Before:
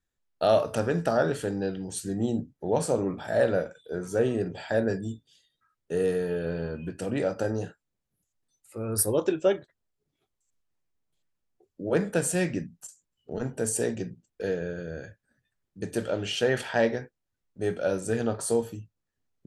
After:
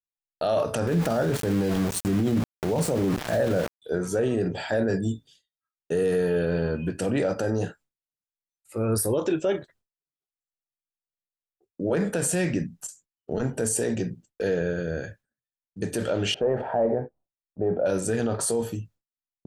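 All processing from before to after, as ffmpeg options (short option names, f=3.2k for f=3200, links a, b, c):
-filter_complex "[0:a]asettb=1/sr,asplit=3[a][b][c];[a]atrim=end=0.874[d];[b]atrim=start=0.87:end=3.82,asetpts=PTS-STARTPTS,afade=t=in:d=0.004:c=qsin,afade=t=out:st=2.946:d=0.004:c=qsin,lowshelf=f=350:g=8,aeval=exprs='val(0)*gte(abs(val(0)),0.0251)':c=same[e];[c]atrim=start=3.816[f];[d][e]acrossfade=d=0.004:c1=hsin:c2=qsin[g];[g][f]acrossfade=d=0.004:c1=qsin:c2=hsin,asettb=1/sr,asplit=3[h][i][j];[h]atrim=end=16.344[k];[i]atrim=start=16.34:end=17.86,asetpts=PTS-STARTPTS,afade=t=in:d=0.004:c=qsin,afade=t=out:st=1.516:d=0.004:c=qsin,asoftclip=type=hard:threshold=-17.5dB,lowpass=f=730:t=q:w=2.2[l];[j]atrim=start=17.856[m];[k][l]acrossfade=d=0.004:c1=hsin:c2=qsin[n];[n][m]acrossfade=d=0.004:c1=qsin:c2=hsin,agate=range=-33dB:threshold=-52dB:ratio=3:detection=peak,alimiter=limit=-23dB:level=0:latency=1:release=36,volume=7dB"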